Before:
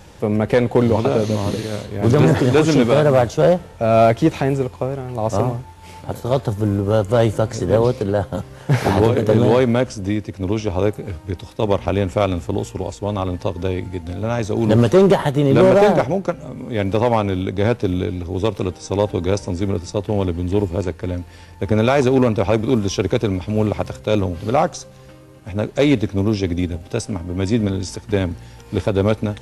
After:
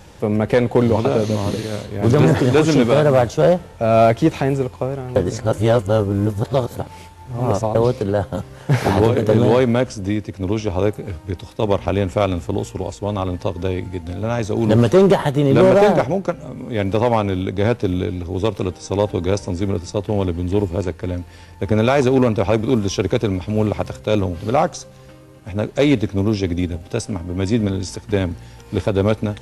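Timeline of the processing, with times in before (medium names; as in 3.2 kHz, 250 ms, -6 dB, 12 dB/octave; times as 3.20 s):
5.16–7.75 s: reverse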